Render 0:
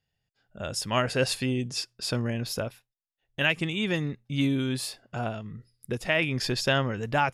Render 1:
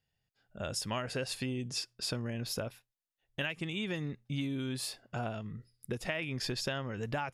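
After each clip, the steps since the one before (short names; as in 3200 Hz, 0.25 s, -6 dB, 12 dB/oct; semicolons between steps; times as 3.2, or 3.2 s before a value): compressor 10:1, threshold -29 dBFS, peak gain reduction 11 dB; gain -2.5 dB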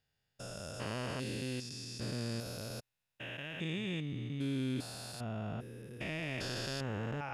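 stepped spectrum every 0.4 s; gain +1.5 dB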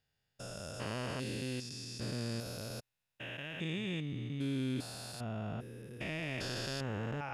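nothing audible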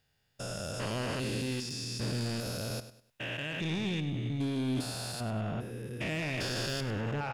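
soft clip -35.5 dBFS, distortion -12 dB; feedback echo 0.1 s, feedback 31%, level -13 dB; gain +7.5 dB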